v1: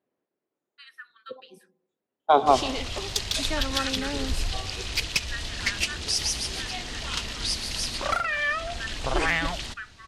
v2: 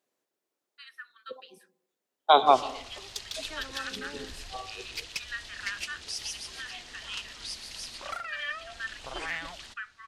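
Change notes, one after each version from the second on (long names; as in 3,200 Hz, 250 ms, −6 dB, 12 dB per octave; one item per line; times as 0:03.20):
second voice: remove high-frequency loss of the air 390 metres
background −10.0 dB
master: add low-shelf EQ 370 Hz −9.5 dB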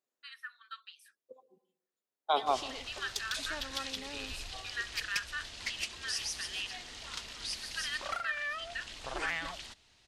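first voice: entry −0.55 s
second voice −10.5 dB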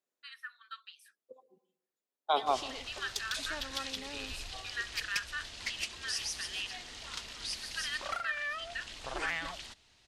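nothing changed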